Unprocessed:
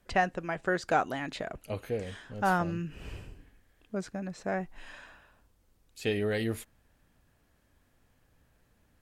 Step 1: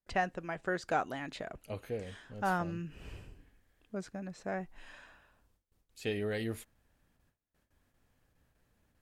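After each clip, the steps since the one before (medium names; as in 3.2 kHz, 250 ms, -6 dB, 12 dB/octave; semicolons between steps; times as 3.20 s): gate with hold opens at -57 dBFS; trim -5 dB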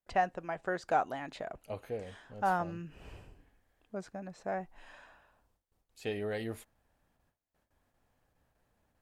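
peaking EQ 770 Hz +7.5 dB 1.3 oct; trim -3.5 dB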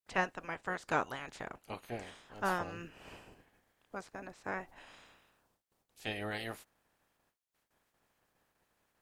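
spectral peaks clipped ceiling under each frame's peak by 19 dB; trim -3 dB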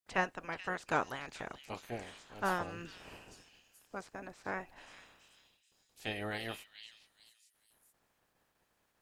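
repeats whose band climbs or falls 429 ms, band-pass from 3.8 kHz, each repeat 0.7 oct, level -4.5 dB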